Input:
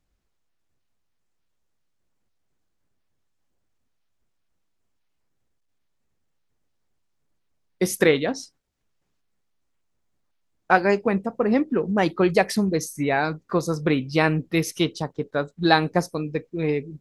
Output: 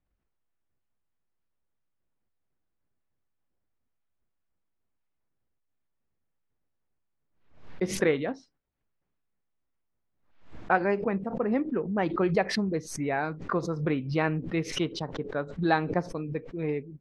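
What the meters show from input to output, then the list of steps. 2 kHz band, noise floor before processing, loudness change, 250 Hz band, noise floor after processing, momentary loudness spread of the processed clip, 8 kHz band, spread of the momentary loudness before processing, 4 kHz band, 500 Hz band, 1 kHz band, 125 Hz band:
-7.0 dB, -73 dBFS, -6.0 dB, -6.0 dB, -79 dBFS, 8 LU, -8.0 dB, 8 LU, -8.0 dB, -6.0 dB, -6.0 dB, -5.0 dB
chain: LPF 2400 Hz 12 dB/oct; backwards sustainer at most 98 dB/s; gain -6.5 dB

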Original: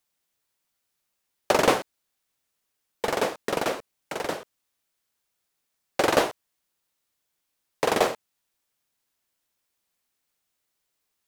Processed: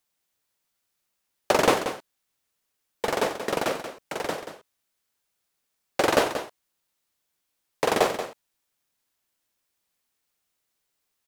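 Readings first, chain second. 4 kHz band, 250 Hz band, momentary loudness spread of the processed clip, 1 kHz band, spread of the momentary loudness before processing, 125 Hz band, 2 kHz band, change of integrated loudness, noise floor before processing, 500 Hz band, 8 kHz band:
+0.5 dB, +0.5 dB, 14 LU, +0.5 dB, 15 LU, +0.5 dB, +0.5 dB, -0.5 dB, -79 dBFS, +0.5 dB, +0.5 dB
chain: echo 0.182 s -10 dB

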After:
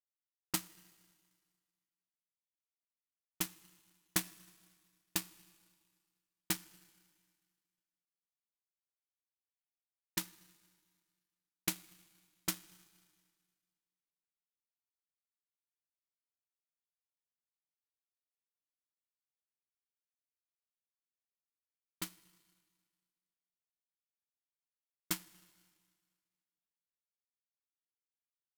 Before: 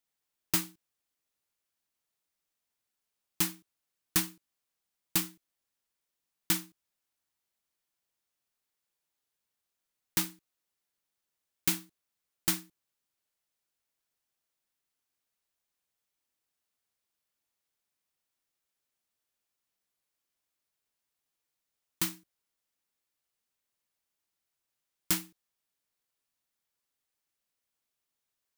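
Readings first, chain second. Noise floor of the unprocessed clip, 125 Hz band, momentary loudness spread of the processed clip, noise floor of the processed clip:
under -85 dBFS, -7.5 dB, 13 LU, under -85 dBFS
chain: low-pass opened by the level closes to 660 Hz, open at -30.5 dBFS; Schroeder reverb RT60 3.8 s, combs from 26 ms, DRR 4 dB; power-law curve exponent 2; gain +4 dB

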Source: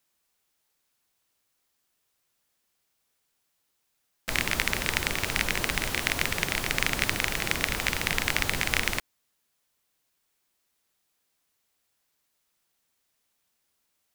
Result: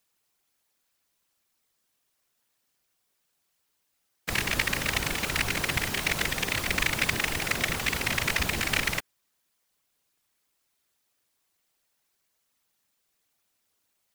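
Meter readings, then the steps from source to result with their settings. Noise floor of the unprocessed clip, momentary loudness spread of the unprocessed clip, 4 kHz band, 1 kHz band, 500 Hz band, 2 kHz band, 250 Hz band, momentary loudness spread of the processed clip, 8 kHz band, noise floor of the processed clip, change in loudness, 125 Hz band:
-76 dBFS, 2 LU, 0.0 dB, 0.0 dB, 0.0 dB, 0.0 dB, +1.0 dB, 2 LU, 0.0 dB, -76 dBFS, 0.0 dB, +1.5 dB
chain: whisperiser

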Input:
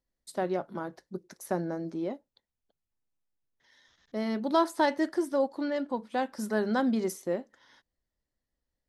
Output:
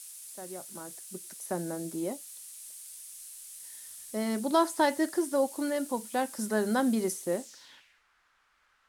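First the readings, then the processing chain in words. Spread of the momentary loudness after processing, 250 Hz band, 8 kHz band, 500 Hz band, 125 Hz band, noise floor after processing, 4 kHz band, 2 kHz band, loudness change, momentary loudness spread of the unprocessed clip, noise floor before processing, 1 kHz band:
16 LU, -0.5 dB, +10.5 dB, -0.5 dB, -2.0 dB, -70 dBFS, +1.5 dB, 0.0 dB, -0.5 dB, 13 LU, under -85 dBFS, -0.5 dB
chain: opening faded in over 2.18 s; added noise violet -44 dBFS; low-pass sweep 9800 Hz -> 1400 Hz, 7.35–8.04

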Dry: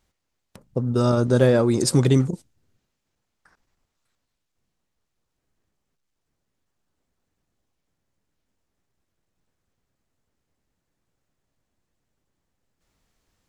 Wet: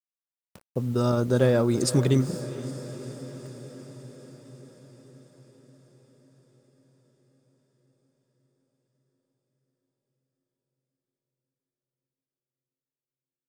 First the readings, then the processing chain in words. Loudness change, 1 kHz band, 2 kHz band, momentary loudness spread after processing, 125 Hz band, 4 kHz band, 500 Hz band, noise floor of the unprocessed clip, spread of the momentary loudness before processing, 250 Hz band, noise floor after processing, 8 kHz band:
-5.5 dB, -3.5 dB, -3.5 dB, 21 LU, -3.5 dB, -3.5 dB, -3.5 dB, -79 dBFS, 11 LU, -3.5 dB, under -85 dBFS, -3.5 dB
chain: bit-crush 8-bit; diffused feedback echo 0.469 s, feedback 68%, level -14 dB; gain -4 dB

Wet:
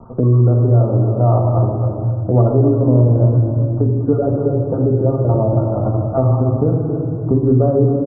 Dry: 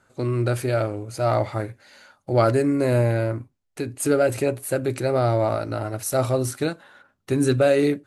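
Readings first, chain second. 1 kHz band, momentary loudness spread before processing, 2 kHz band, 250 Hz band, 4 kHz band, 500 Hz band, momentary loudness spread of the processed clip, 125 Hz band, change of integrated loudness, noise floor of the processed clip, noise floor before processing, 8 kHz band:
+2.5 dB, 10 LU, under -15 dB, +8.0 dB, under -40 dB, +4.0 dB, 5 LU, +13.0 dB, +7.5 dB, -23 dBFS, -73 dBFS, under -40 dB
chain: random spectral dropouts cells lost 24%; steep low-pass 1200 Hz 72 dB/oct; low shelf 280 Hz +9 dB; on a send: echo 0.268 s -10 dB; on the sum: shoebox room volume 1400 m³, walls mixed, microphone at 1.7 m; three-band squash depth 70%

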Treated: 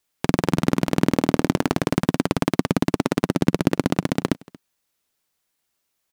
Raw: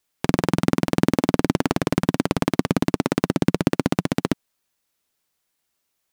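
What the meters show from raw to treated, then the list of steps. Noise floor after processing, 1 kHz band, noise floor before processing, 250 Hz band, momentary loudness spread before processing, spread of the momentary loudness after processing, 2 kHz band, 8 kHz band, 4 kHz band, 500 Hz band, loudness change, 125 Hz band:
-76 dBFS, 0.0 dB, -76 dBFS, 0.0 dB, 4 LU, 4 LU, 0.0 dB, 0.0 dB, 0.0 dB, 0.0 dB, 0.0 dB, 0.0 dB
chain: echo 0.231 s -23 dB

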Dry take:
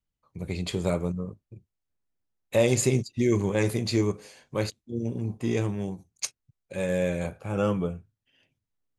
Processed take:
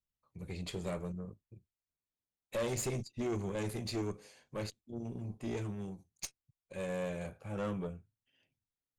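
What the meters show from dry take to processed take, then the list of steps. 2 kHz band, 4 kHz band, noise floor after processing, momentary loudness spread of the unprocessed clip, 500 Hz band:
-11.5 dB, -10.0 dB, under -85 dBFS, 11 LU, -12.0 dB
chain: tube stage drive 23 dB, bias 0.5; gain -7 dB

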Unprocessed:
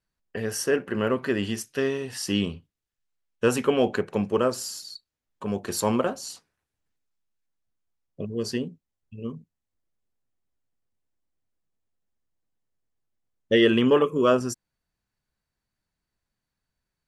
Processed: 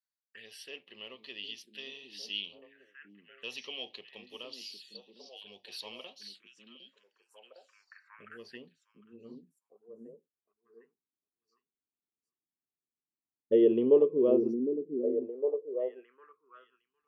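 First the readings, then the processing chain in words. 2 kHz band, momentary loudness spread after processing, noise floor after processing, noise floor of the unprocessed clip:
-15.0 dB, 25 LU, under -85 dBFS, -85 dBFS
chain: delay with a stepping band-pass 0.757 s, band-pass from 240 Hz, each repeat 1.4 oct, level -1.5 dB; envelope phaser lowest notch 520 Hz, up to 1500 Hz, full sweep at -24.5 dBFS; band-pass sweep 3500 Hz -> 420 Hz, 7.07–10.69

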